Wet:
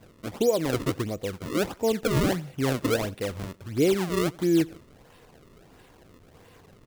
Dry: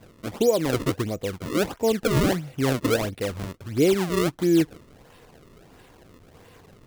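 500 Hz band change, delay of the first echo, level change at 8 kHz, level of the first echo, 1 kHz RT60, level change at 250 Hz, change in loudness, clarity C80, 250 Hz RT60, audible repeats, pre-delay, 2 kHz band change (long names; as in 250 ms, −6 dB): −2.5 dB, 88 ms, −2.5 dB, −23.5 dB, no reverb audible, −2.5 dB, −2.5 dB, no reverb audible, no reverb audible, 2, no reverb audible, −2.5 dB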